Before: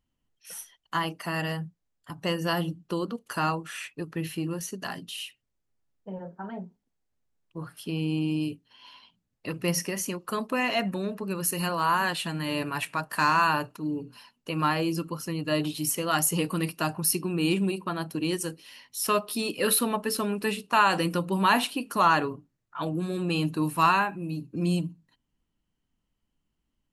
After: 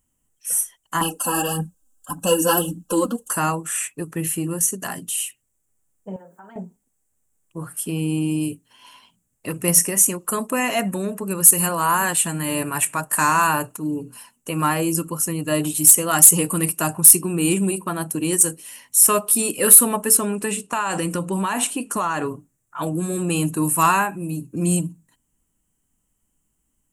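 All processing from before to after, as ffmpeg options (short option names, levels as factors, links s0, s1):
-filter_complex "[0:a]asettb=1/sr,asplit=3[s0][s1][s2];[s0]atrim=end=1.014[s3];[s1]atrim=start=1.01:end=3.31,asetpts=PTS-STARTPTS,afade=t=in:d=0.004:c=qsin,afade=t=out:st=2.296:d=0.004:c=qsin,aecho=1:1:3.8:0.96,atrim=end_sample=101430,aphaser=in_gain=1:out_gain=1:delay=4.2:decay=0.57:speed=1.7:type=triangular,asuperstop=centerf=2100:order=20:qfactor=2.6[s4];[s2]atrim=start=3.306[s5];[s3][s4]acrossfade=d=0.004:c1=hsin:c2=qsin[s6];[s6][s5]acrossfade=d=0.004:c1=qsin:c2=hsin,asettb=1/sr,asplit=3[s7][s8][s9];[s7]atrim=end=6.164[s10];[s8]atrim=start=6.16:end=6.56,asetpts=PTS-STARTPTS,afade=t=in:d=0.004:c=qsin,afade=t=out:st=0.396:d=0.004:c=qsin,lowpass=f=3100:p=1,aemphasis=mode=production:type=riaa,acompressor=threshold=0.00316:ratio=2.5:attack=3.2:release=140:knee=1:detection=peak[s11];[s9]atrim=start=6.556[s12];[s10][s11]acrossfade=d=0.004:c1=hsin:c2=qsin[s13];[s13][s12]acrossfade=d=0.004:c1=qsin:c2=hsin,asettb=1/sr,asplit=3[s14][s15][s16];[s14]atrim=end=20.174[s17];[s15]atrim=start=20.17:end=22.26,asetpts=PTS-STARTPTS,afade=t=in:d=0.004:c=qsin,afade=t=out:st=2.086:d=0.004:c=qsin,lowpass=7700,acompressor=threshold=0.0631:ratio=6:attack=3.2:release=140:knee=1:detection=peak[s18];[s16]atrim=start=22.256[s19];[s17][s18]acrossfade=d=0.004:c1=hsin:c2=qsin[s20];[s20][s19]acrossfade=d=0.004:c1=qsin:c2=hsin,highshelf=f=6000:t=q:w=3:g=11,acontrast=62,volume=0.891"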